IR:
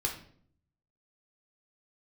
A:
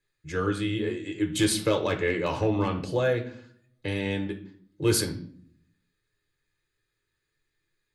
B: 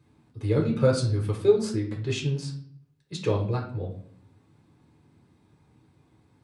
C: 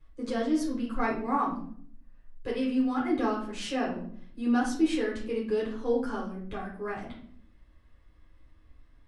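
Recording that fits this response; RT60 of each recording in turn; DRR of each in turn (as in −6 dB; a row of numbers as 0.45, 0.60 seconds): B; 0.55, 0.55, 0.55 seconds; 5.0, 0.0, −6.0 decibels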